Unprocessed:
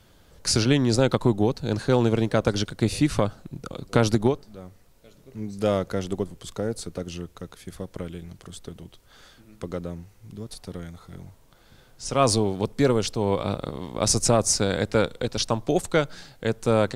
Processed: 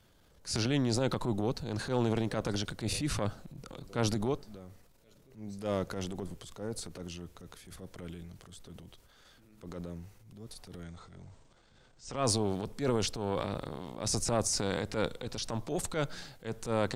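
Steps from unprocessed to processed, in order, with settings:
transient designer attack −9 dB, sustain +7 dB
0:10.83–0:12.25: linear-phase brick-wall low-pass 9,000 Hz
level −8.5 dB

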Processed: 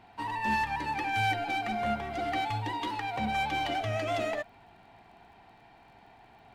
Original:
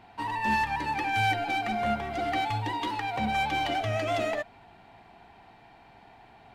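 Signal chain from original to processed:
surface crackle 27 per second −55 dBFS
level −2.5 dB

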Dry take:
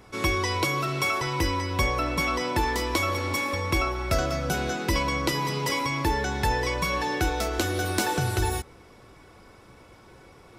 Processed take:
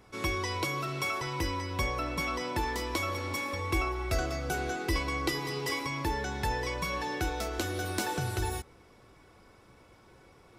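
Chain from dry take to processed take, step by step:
0:03.59–0:05.87: comb filter 2.6 ms, depth 58%
level −6.5 dB

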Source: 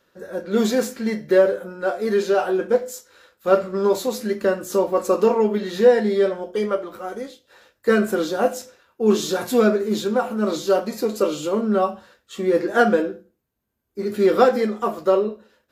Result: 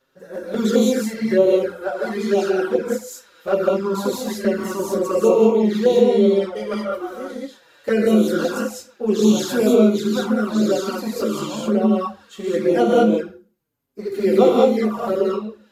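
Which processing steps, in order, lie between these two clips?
reverb whose tail is shaped and stops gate 230 ms rising, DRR −3.5 dB
flanger swept by the level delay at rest 7.6 ms, full sweep at −10 dBFS
level −1 dB

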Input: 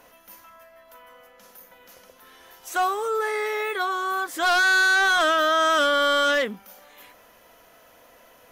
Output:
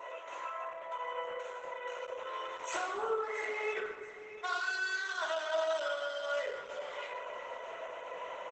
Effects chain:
adaptive Wiener filter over 9 samples
notch filter 1,600 Hz, Q 8.7
0:03.79–0:05.86: noise gate −20 dBFS, range −55 dB
high-pass filter 480 Hz 24 dB per octave
comb filter 2 ms, depth 74%
brickwall limiter −20 dBFS, peak gain reduction 11 dB
downward compressor 12 to 1, threshold −42 dBFS, peak gain reduction 18.5 dB
repeating echo 677 ms, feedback 22%, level −14 dB
convolution reverb RT60 1.3 s, pre-delay 3 ms, DRR −3.5 dB
downsampling to 22,050 Hz
level +5.5 dB
Opus 12 kbit/s 48,000 Hz

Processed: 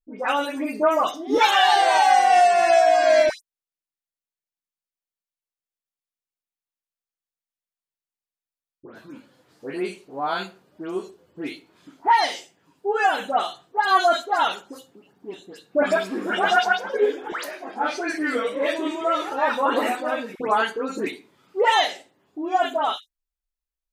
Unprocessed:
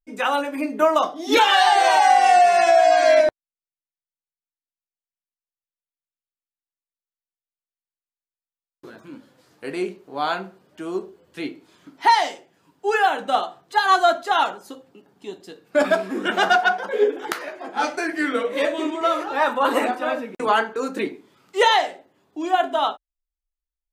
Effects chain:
all-pass dispersion highs, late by 126 ms, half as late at 2,200 Hz
level −1.5 dB

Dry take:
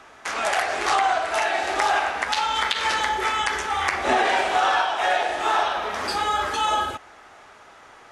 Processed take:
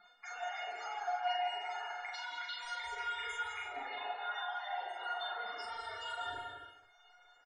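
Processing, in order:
reverb reduction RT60 0.76 s
mains-hum notches 60/120/180/240/300/360/420 Hz
reversed playback
downward compressor 8 to 1, threshold −31 dBFS, peak gain reduction 14.5 dB
reversed playback
dead-zone distortion −50 dBFS
tuned comb filter 660 Hz, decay 0.25 s, harmonics all, mix 90%
spectral peaks only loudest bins 32
on a send: loudspeakers that aren't time-aligned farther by 15 metres −3 dB, 72 metres −11 dB
on the sum: reverb whose tail is shaped and stops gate 380 ms flat, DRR 2.5 dB
wrong playback speed 44.1 kHz file played as 48 kHz
level +6 dB

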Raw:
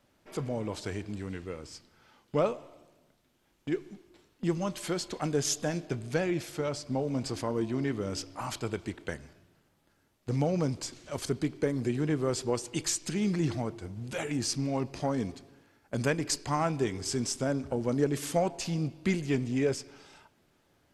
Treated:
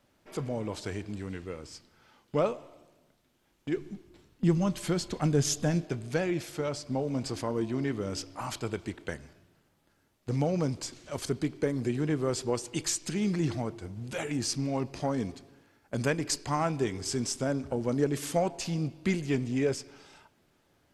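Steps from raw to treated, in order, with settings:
0:03.77–0:05.84: bass and treble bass +9 dB, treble 0 dB

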